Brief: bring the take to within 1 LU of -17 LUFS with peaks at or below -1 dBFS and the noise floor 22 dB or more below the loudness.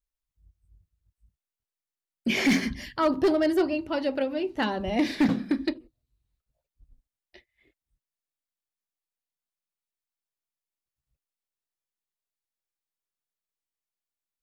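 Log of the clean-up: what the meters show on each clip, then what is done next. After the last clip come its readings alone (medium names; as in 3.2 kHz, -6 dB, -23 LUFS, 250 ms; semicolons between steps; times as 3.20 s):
clipped samples 0.4%; clipping level -16.5 dBFS; loudness -26.5 LUFS; peak level -16.5 dBFS; loudness target -17.0 LUFS
-> clip repair -16.5 dBFS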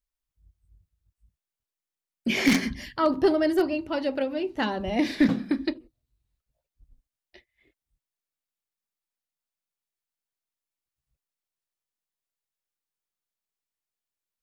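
clipped samples 0.0%; loudness -25.5 LUFS; peak level -7.5 dBFS; loudness target -17.0 LUFS
-> trim +8.5 dB; peak limiter -1 dBFS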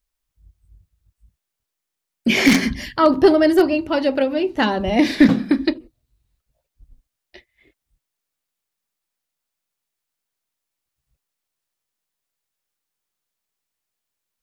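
loudness -17.5 LUFS; peak level -1.0 dBFS; noise floor -82 dBFS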